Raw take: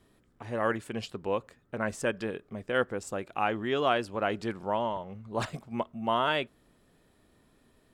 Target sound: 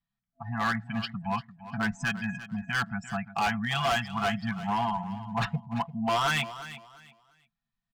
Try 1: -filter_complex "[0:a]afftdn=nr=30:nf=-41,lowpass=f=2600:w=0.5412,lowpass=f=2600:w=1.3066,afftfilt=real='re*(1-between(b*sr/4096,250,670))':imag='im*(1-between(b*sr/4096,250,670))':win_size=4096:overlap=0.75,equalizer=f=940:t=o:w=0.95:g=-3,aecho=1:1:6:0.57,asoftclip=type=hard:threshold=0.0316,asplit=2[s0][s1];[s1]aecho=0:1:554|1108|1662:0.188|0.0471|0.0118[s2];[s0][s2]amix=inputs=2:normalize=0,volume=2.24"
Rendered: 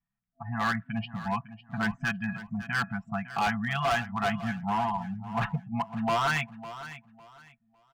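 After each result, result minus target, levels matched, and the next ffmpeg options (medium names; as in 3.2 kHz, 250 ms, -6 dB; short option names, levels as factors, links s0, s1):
echo 209 ms late; 8 kHz band -3.0 dB
-filter_complex "[0:a]afftdn=nr=30:nf=-41,lowpass=f=2600:w=0.5412,lowpass=f=2600:w=1.3066,afftfilt=real='re*(1-between(b*sr/4096,250,670))':imag='im*(1-between(b*sr/4096,250,670))':win_size=4096:overlap=0.75,equalizer=f=940:t=o:w=0.95:g=-3,aecho=1:1:6:0.57,asoftclip=type=hard:threshold=0.0316,asplit=2[s0][s1];[s1]aecho=0:1:345|690|1035:0.188|0.0471|0.0118[s2];[s0][s2]amix=inputs=2:normalize=0,volume=2.24"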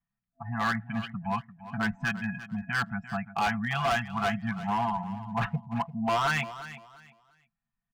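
8 kHz band -3.0 dB
-filter_complex "[0:a]afftdn=nr=30:nf=-41,lowpass=f=5800:w=0.5412,lowpass=f=5800:w=1.3066,afftfilt=real='re*(1-between(b*sr/4096,250,670))':imag='im*(1-between(b*sr/4096,250,670))':win_size=4096:overlap=0.75,equalizer=f=940:t=o:w=0.95:g=-3,aecho=1:1:6:0.57,asoftclip=type=hard:threshold=0.0316,asplit=2[s0][s1];[s1]aecho=0:1:345|690|1035:0.188|0.0471|0.0118[s2];[s0][s2]amix=inputs=2:normalize=0,volume=2.24"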